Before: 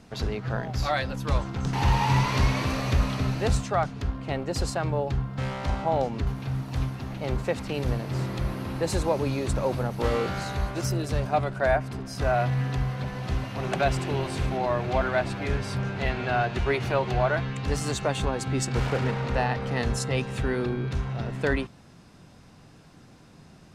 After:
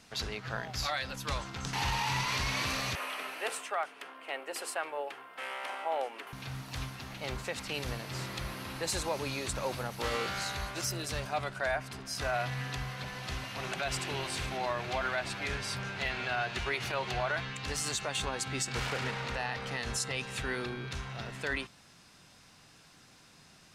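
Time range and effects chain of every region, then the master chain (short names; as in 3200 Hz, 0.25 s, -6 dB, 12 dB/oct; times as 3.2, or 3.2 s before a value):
2.95–6.33 HPF 350 Hz 24 dB/oct + band shelf 5200 Hz -11 dB 1.2 oct + notches 50/100/150/200/250/300/350/400/450 Hz
whole clip: tilt shelf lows -8 dB; limiter -18 dBFS; gain -4.5 dB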